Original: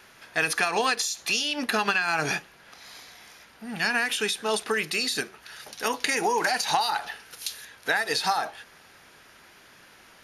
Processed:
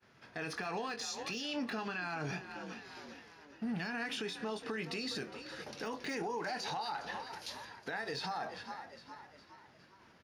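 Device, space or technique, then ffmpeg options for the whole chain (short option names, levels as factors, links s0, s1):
broadcast voice chain: -filter_complex "[0:a]aemphasis=mode=reproduction:type=riaa,asplit=2[s0][s1];[s1]adelay=22,volume=0.299[s2];[s0][s2]amix=inputs=2:normalize=0,agate=range=0.0224:threshold=0.00631:ratio=3:detection=peak,asplit=5[s3][s4][s5][s6][s7];[s4]adelay=410,afreqshift=47,volume=0.119[s8];[s5]adelay=820,afreqshift=94,volume=0.0569[s9];[s6]adelay=1230,afreqshift=141,volume=0.0272[s10];[s7]adelay=1640,afreqshift=188,volume=0.0132[s11];[s3][s8][s9][s10][s11]amix=inputs=5:normalize=0,highpass=120,deesser=0.8,acompressor=threshold=0.0316:ratio=5,equalizer=f=5100:t=o:w=0.6:g=6,alimiter=level_in=1.33:limit=0.0631:level=0:latency=1:release=24,volume=0.75,volume=0.668"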